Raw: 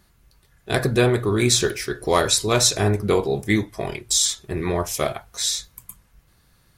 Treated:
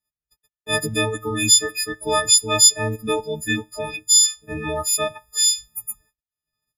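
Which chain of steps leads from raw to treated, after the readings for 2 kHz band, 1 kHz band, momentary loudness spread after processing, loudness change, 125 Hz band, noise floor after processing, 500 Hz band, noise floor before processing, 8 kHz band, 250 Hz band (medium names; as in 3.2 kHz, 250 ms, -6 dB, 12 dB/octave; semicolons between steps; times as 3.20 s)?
+1.0 dB, -0.5 dB, 16 LU, +3.0 dB, -7.0 dB, under -85 dBFS, -4.0 dB, -60 dBFS, +6.5 dB, -5.0 dB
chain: partials quantised in pitch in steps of 6 st; gate -46 dBFS, range -35 dB; in parallel at -1 dB: compression, threshold -19 dBFS, peak gain reduction 17 dB; on the sum: reverb removal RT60 0.78 s; trim -8 dB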